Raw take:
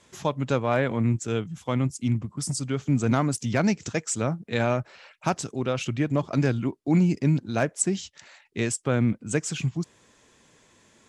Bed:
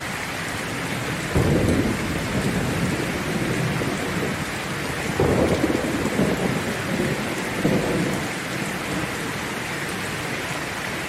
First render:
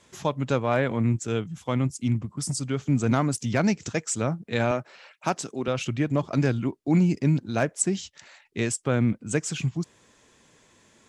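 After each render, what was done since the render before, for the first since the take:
0:04.71–0:05.68: high-pass filter 190 Hz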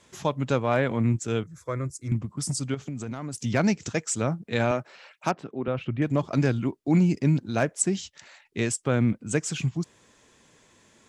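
0:01.43–0:02.12: phaser with its sweep stopped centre 810 Hz, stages 6
0:02.74–0:03.42: downward compressor 16 to 1, threshold −29 dBFS
0:05.31–0:06.02: high-frequency loss of the air 490 metres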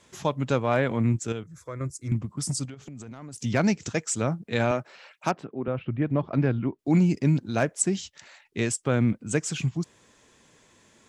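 0:01.32–0:01.81: downward compressor 1.5 to 1, threshold −42 dBFS
0:02.65–0:03.36: downward compressor, threshold −37 dBFS
0:05.45–0:06.79: high-frequency loss of the air 360 metres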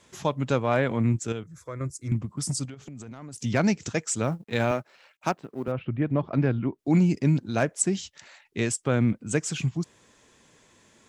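0:04.23–0:05.72: mu-law and A-law mismatch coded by A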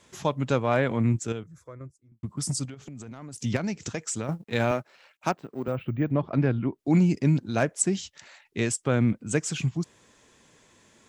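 0:01.18–0:02.23: fade out and dull
0:03.56–0:04.29: downward compressor, threshold −26 dBFS
0:05.32–0:06.11: bad sample-rate conversion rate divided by 2×, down filtered, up hold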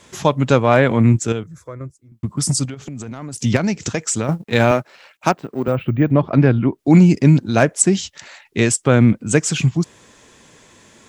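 level +10.5 dB
brickwall limiter −1 dBFS, peak gain reduction 1.5 dB

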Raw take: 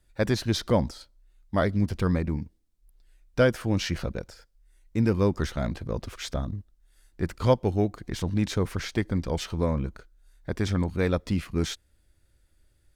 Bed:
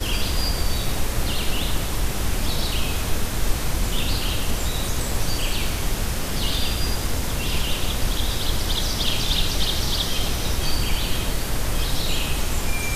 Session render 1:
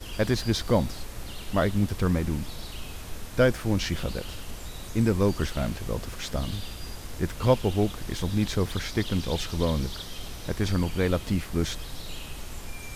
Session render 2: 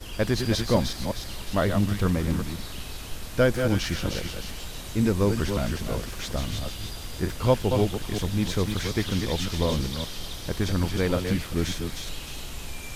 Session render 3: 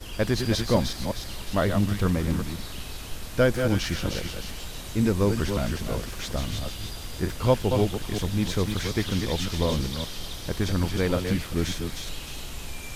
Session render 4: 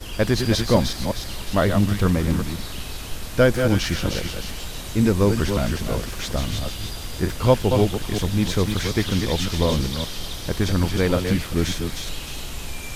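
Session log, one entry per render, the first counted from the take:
mix in bed −14.5 dB
delay that plays each chunk backwards 186 ms, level −6 dB; delay with a high-pass on its return 309 ms, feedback 49%, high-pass 2,200 Hz, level −4 dB
no processing that can be heard
level +4.5 dB

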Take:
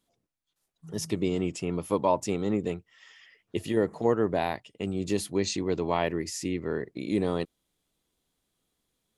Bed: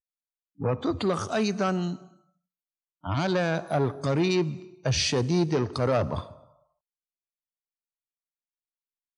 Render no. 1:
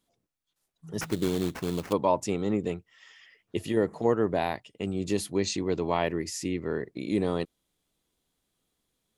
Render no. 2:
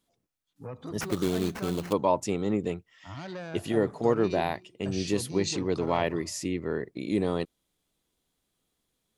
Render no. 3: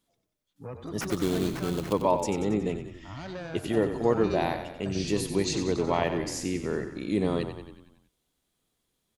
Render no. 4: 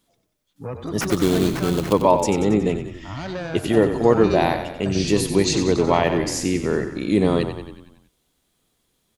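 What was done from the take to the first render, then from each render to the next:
0:01.01–0:01.93: sample-rate reduction 3,800 Hz, jitter 20%
mix in bed −13.5 dB
echo with shifted repeats 92 ms, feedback 58%, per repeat −31 Hz, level −9 dB
level +8.5 dB; brickwall limiter −3 dBFS, peak gain reduction 2.5 dB

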